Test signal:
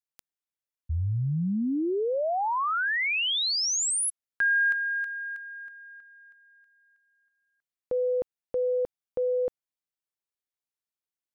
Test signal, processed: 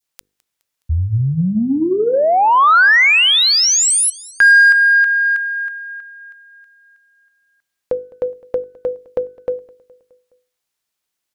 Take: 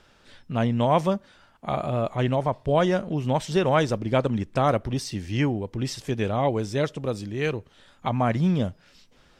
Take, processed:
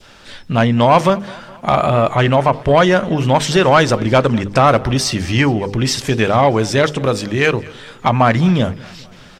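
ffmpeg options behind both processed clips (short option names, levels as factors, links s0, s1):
-filter_complex "[0:a]equalizer=f=4600:w=0.34:g=3,asplit=2[s0][s1];[s1]acompressor=threshold=0.0282:ratio=6:attack=74:release=103,volume=1.41[s2];[s0][s2]amix=inputs=2:normalize=0,bandreject=f=50:t=h:w=6,bandreject=f=100:t=h:w=6,bandreject=f=150:t=h:w=6,bandreject=f=200:t=h:w=6,bandreject=f=250:t=h:w=6,bandreject=f=300:t=h:w=6,bandreject=f=350:t=h:w=6,bandreject=f=400:t=h:w=6,bandreject=f=450:t=h:w=6,bandreject=f=500:t=h:w=6,adynamicequalizer=threshold=0.0224:dfrequency=1400:dqfactor=0.78:tfrequency=1400:tqfactor=0.78:attack=5:release=100:ratio=0.375:range=3:mode=boostabove:tftype=bell,asoftclip=type=tanh:threshold=0.376,asplit=2[s3][s4];[s4]aecho=0:1:209|418|627|836:0.075|0.042|0.0235|0.0132[s5];[s3][s5]amix=inputs=2:normalize=0,volume=2"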